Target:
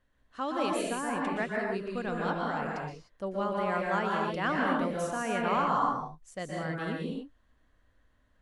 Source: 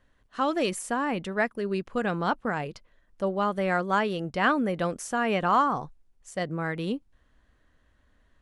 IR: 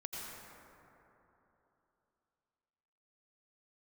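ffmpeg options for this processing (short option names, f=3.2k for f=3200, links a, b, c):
-filter_complex "[1:a]atrim=start_sample=2205,afade=t=out:st=0.27:d=0.01,atrim=end_sample=12348,asetrate=31311,aresample=44100[a];[0:a][a]afir=irnorm=-1:irlink=0,volume=-4dB"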